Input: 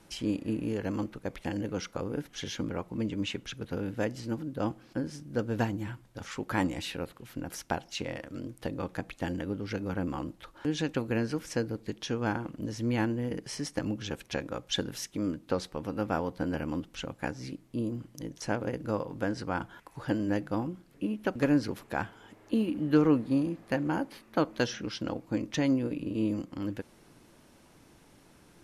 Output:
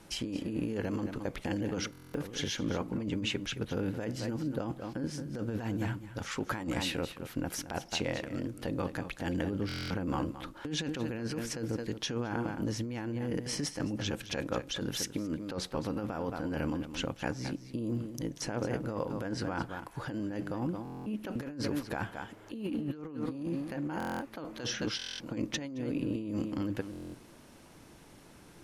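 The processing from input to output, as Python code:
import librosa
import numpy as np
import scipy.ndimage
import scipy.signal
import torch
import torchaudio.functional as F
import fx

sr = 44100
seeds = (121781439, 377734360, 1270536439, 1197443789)

p1 = x + fx.echo_single(x, sr, ms=218, db=-13.0, dry=0)
p2 = fx.over_compress(p1, sr, threshold_db=-34.0, ratio=-1.0)
y = fx.buffer_glitch(p2, sr, at_s=(1.91, 9.67, 20.83, 23.98, 24.97, 26.91), block=1024, repeats=9)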